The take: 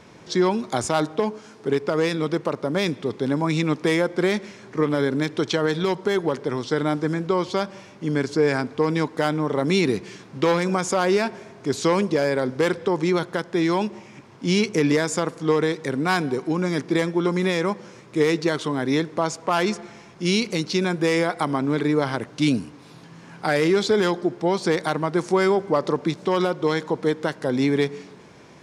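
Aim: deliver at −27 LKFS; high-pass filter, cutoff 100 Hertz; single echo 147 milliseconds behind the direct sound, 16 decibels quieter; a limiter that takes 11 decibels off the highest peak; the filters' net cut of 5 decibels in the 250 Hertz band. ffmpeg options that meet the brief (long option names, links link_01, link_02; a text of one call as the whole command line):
ffmpeg -i in.wav -af "highpass=100,equalizer=frequency=250:width_type=o:gain=-7.5,alimiter=limit=-19.5dB:level=0:latency=1,aecho=1:1:147:0.158,volume=3.5dB" out.wav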